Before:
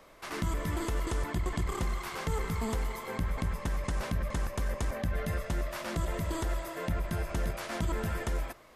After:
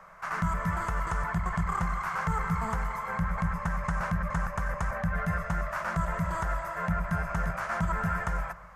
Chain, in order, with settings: EQ curve 120 Hz 0 dB, 180 Hz +9 dB, 270 Hz -19 dB, 620 Hz +2 dB, 1400 Hz +12 dB, 3600 Hz -11 dB, 6500 Hz -3 dB, 9900 Hz -8 dB; darkening echo 0.121 s, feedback 64%, level -18.5 dB

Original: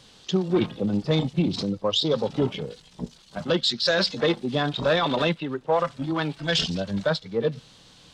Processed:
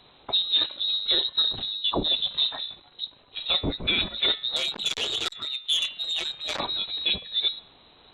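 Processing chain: de-hum 100.7 Hz, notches 27; inverted band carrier 4000 Hz; 4.56–6.6 core saturation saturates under 4000 Hz; gain -1.5 dB

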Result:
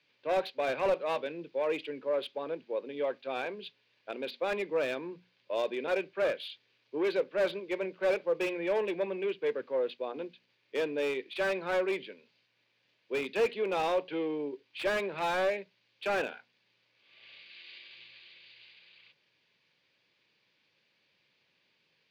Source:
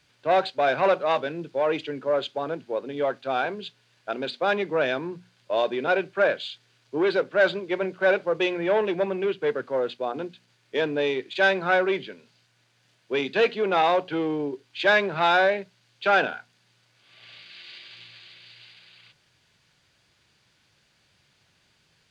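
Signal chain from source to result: speaker cabinet 220–4800 Hz, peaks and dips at 510 Hz +4 dB, 720 Hz -6 dB, 1400 Hz -7 dB, 2400 Hz +5 dB; slew limiter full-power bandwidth 110 Hz; gain -7 dB

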